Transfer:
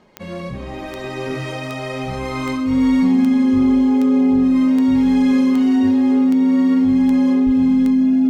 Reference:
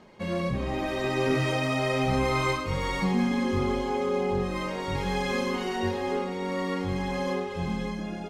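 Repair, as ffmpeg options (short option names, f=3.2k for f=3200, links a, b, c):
-filter_complex "[0:a]adeclick=t=4,bandreject=f=260:w=30,asplit=3[a][b][c];[a]afade=t=out:st=7.45:d=0.02[d];[b]highpass=f=140:w=0.5412,highpass=f=140:w=1.3066,afade=t=in:st=7.45:d=0.02,afade=t=out:st=7.57:d=0.02[e];[c]afade=t=in:st=7.57:d=0.02[f];[d][e][f]amix=inputs=3:normalize=0"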